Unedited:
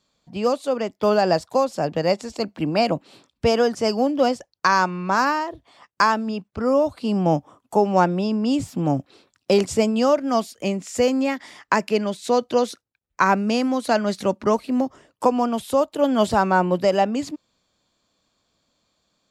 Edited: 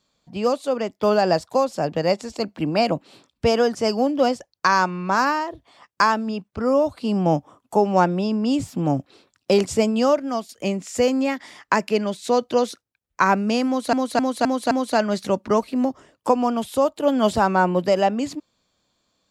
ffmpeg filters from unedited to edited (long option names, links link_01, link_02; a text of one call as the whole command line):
ffmpeg -i in.wav -filter_complex "[0:a]asplit=6[link_01][link_02][link_03][link_04][link_05][link_06];[link_01]atrim=end=10.49,asetpts=PTS-STARTPTS,afade=type=out:start_time=10.11:duration=0.38:silence=0.334965[link_07];[link_02]atrim=start=10.49:end=13.932,asetpts=PTS-STARTPTS,afade=type=in:duration=0.004:curve=hsin:silence=0.334965[link_08];[link_03]atrim=start=13.668:end=13.932[link_09];[link_04]atrim=start=13.668:end=13.932[link_10];[link_05]atrim=start=13.668:end=13.932[link_11];[link_06]atrim=start=13.668[link_12];[link_07][link_08]concat=n=2:v=0:a=1[link_13];[link_13][link_09]acrossfade=duration=0.004:curve1=hsin:curve2=hsin[link_14];[link_14][link_10]acrossfade=duration=0.004:curve1=hsin:curve2=hsin[link_15];[link_15][link_11]acrossfade=duration=0.004:curve1=hsin:curve2=hsin[link_16];[link_16][link_12]acrossfade=duration=0.004:curve1=hsin:curve2=hsin" out.wav